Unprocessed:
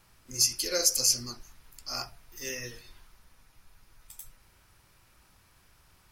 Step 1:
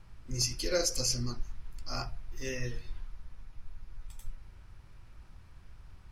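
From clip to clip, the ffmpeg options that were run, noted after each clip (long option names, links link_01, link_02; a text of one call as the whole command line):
ffmpeg -i in.wav -af "aemphasis=mode=reproduction:type=bsi" out.wav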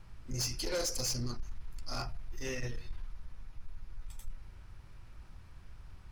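ffmpeg -i in.wav -af "asoftclip=type=tanh:threshold=-30.5dB,volume=1dB" out.wav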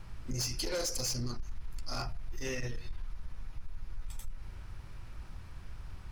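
ffmpeg -i in.wav -af "acompressor=threshold=-38dB:ratio=6,volume=6dB" out.wav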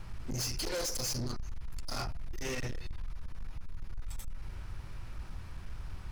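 ffmpeg -i in.wav -af "volume=35.5dB,asoftclip=hard,volume=-35.5dB,volume=3dB" out.wav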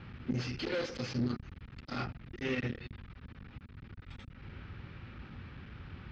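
ffmpeg -i in.wav -af "highpass=100,equalizer=frequency=240:width_type=q:width=4:gain=6,equalizer=frequency=660:width_type=q:width=4:gain=-8,equalizer=frequency=980:width_type=q:width=4:gain=-8,lowpass=frequency=3500:width=0.5412,lowpass=frequency=3500:width=1.3066,volume=3.5dB" out.wav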